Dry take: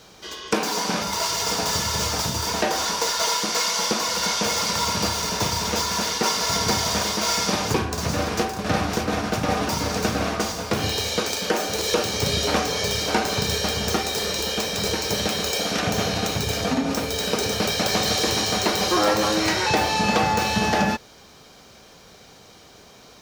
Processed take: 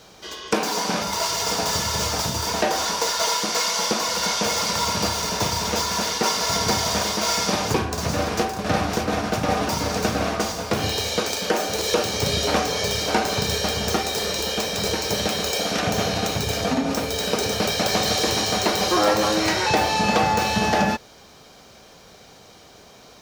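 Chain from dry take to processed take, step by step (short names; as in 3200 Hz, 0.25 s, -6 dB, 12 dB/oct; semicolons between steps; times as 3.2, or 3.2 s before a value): bell 660 Hz +2.5 dB 0.77 oct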